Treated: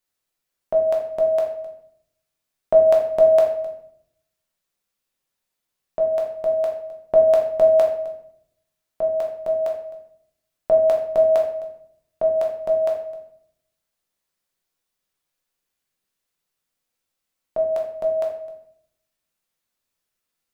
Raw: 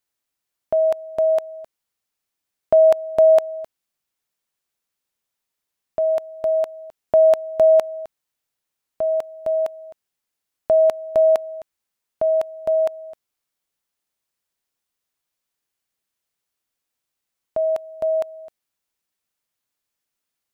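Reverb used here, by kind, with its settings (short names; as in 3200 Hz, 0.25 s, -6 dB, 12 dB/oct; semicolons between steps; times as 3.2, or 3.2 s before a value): shoebox room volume 130 m³, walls mixed, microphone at 1 m; gain -2 dB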